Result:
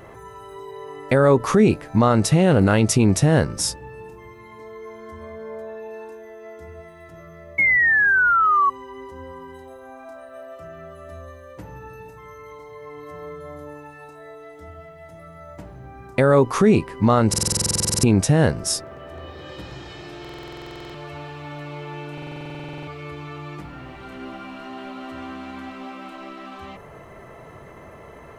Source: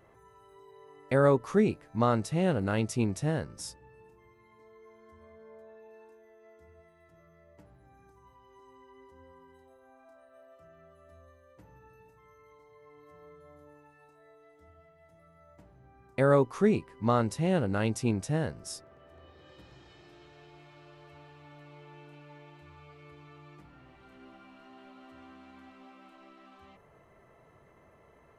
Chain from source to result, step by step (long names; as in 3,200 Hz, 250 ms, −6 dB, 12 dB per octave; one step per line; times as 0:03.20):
sound drawn into the spectrogram fall, 0:07.58–0:08.70, 1,100–2,200 Hz −34 dBFS
buffer that repeats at 0:17.29/0:20.20/0:22.13, samples 2,048, times 15
boost into a limiter +23.5 dB
level −6 dB